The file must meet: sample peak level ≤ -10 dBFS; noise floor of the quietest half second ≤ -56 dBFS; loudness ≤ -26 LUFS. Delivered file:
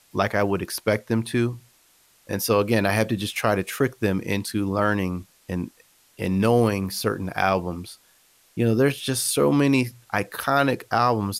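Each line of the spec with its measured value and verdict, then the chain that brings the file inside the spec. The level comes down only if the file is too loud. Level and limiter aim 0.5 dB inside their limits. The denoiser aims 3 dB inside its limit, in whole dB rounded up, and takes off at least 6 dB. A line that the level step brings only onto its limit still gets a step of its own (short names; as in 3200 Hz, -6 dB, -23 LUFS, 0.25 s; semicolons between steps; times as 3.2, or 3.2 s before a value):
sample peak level -7.0 dBFS: fail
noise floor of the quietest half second -59 dBFS: OK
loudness -23.5 LUFS: fail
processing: gain -3 dB; limiter -10.5 dBFS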